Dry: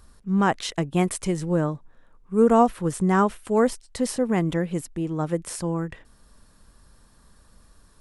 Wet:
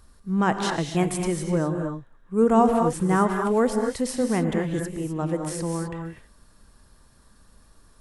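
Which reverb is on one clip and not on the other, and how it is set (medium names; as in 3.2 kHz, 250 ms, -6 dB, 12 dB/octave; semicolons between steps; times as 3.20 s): gated-style reverb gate 280 ms rising, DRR 3.5 dB; trim -1.5 dB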